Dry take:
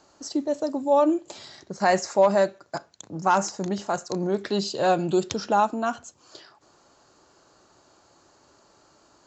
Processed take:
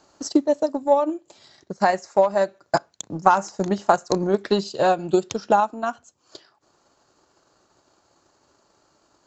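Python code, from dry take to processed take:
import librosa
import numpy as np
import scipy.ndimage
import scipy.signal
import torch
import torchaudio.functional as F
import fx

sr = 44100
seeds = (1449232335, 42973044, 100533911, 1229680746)

y = fx.transient(x, sr, attack_db=9, sustain_db=-5)
y = fx.rider(y, sr, range_db=5, speed_s=0.5)
y = fx.dynamic_eq(y, sr, hz=910.0, q=0.7, threshold_db=-29.0, ratio=4.0, max_db=3)
y = y * librosa.db_to_amplitude(-2.5)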